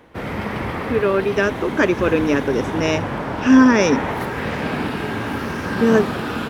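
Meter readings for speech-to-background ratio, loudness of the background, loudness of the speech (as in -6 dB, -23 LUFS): 7.0 dB, -25.0 LUFS, -18.0 LUFS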